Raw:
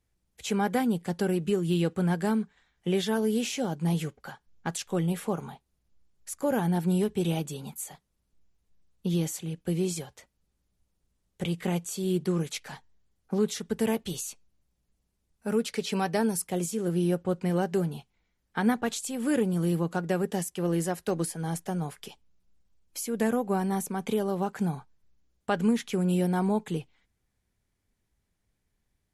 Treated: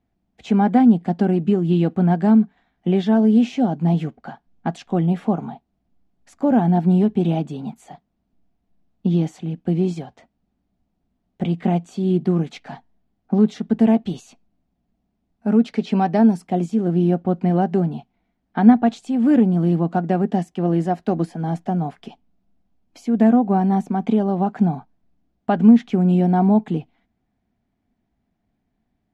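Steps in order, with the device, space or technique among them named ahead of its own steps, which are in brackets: inside a cardboard box (LPF 3700 Hz 12 dB/oct; small resonant body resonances 240/690 Hz, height 15 dB, ringing for 25 ms)

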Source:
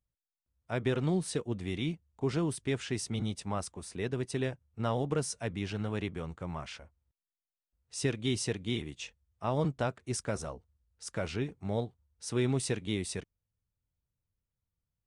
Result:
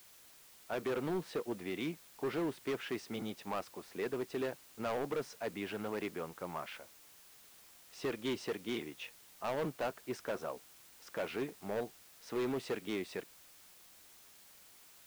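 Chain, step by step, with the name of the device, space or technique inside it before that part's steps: aircraft radio (BPF 320–2500 Hz; hard clip -32.5 dBFS, distortion -9 dB; white noise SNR 19 dB); gain +1.5 dB

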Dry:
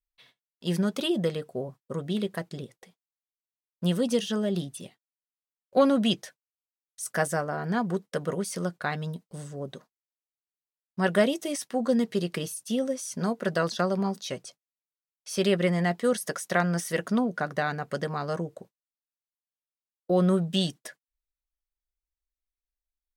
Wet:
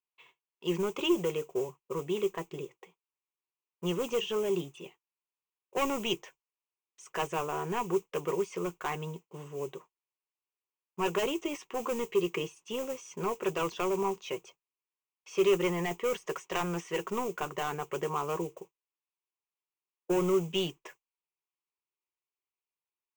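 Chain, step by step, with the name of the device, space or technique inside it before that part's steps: carbon microphone (BPF 320–2700 Hz; soft clip -24 dBFS, distortion -10 dB; modulation noise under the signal 19 dB); ripple EQ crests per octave 0.72, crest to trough 14 dB

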